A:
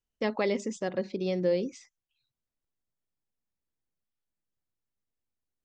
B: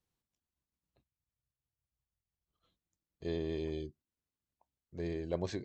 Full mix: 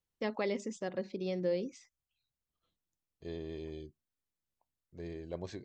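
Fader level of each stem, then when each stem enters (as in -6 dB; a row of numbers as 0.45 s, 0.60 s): -6.0 dB, -5.5 dB; 0.00 s, 0.00 s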